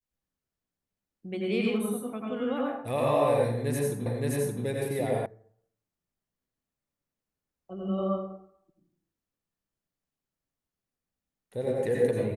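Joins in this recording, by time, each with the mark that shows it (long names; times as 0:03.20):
0:04.06: the same again, the last 0.57 s
0:05.26: cut off before it has died away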